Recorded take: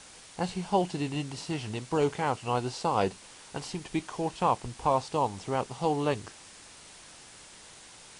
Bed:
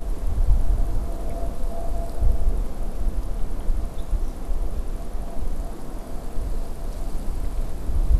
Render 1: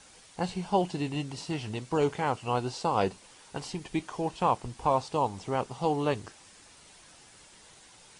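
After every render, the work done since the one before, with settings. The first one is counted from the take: denoiser 6 dB, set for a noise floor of -51 dBFS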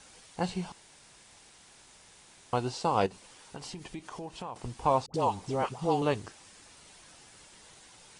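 0.72–2.53 room tone; 3.06–4.56 compressor 4:1, threshold -38 dBFS; 5.06–6.02 dispersion highs, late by 80 ms, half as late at 740 Hz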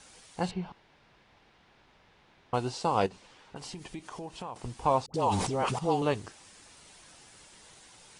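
0.51–2.54 air absorption 310 m; 3.08–3.55 LPF 6700 Hz -> 2800 Hz; 5.24–5.79 sustainer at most 38 dB/s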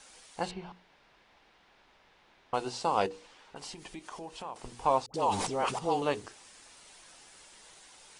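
bell 110 Hz -9.5 dB 2 oct; notches 60/120/180/240/300/360/420/480 Hz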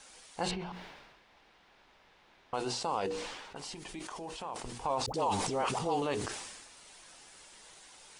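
limiter -22.5 dBFS, peak gain reduction 9 dB; sustainer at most 41 dB/s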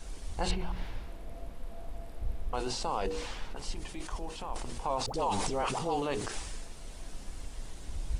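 add bed -15.5 dB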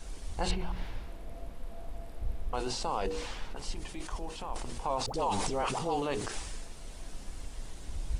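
nothing audible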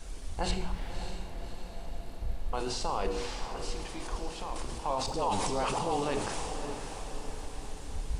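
diffused feedback echo 0.584 s, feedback 53%, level -8.5 dB; Schroeder reverb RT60 0.73 s, combs from 27 ms, DRR 9 dB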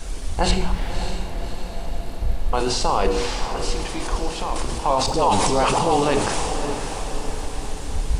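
gain +12 dB

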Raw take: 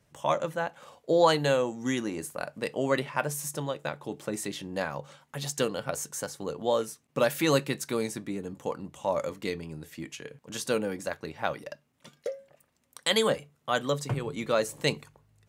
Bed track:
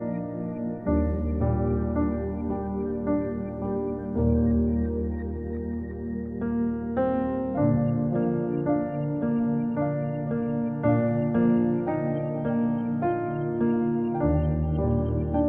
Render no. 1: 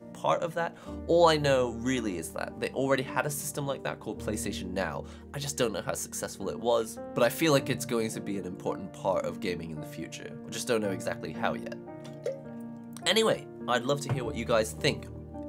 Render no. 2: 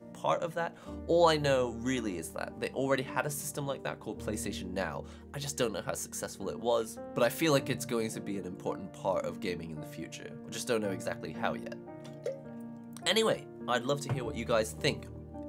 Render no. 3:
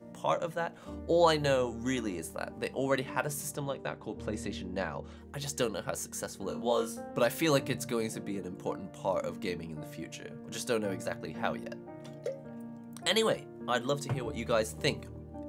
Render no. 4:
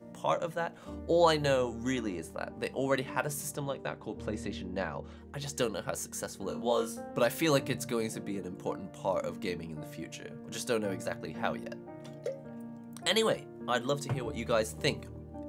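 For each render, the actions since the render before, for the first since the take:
add bed track -16.5 dB
gain -3 dB
3.55–5.17 air absorption 68 m; 6.46–7.11 flutter echo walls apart 3.7 m, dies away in 0.23 s
1.91–2.58 high shelf 9000 Hz -> 5700 Hz -10.5 dB; 4.32–5.55 high shelf 7600 Hz -8 dB

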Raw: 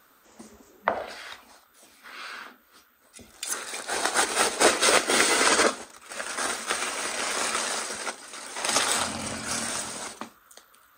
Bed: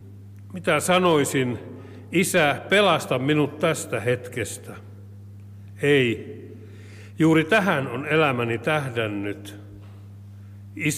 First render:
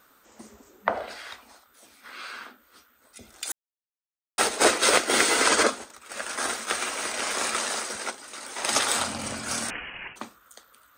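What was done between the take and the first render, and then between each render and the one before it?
3.52–4.38 mute; 9.7–10.16 inverted band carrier 3100 Hz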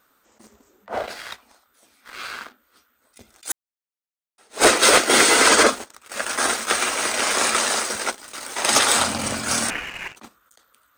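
sample leveller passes 2; attack slew limiter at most 320 dB/s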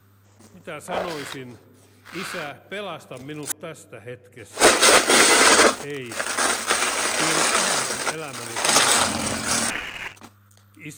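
add bed -14 dB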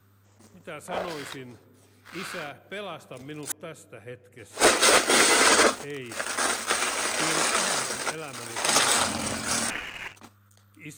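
gain -4.5 dB

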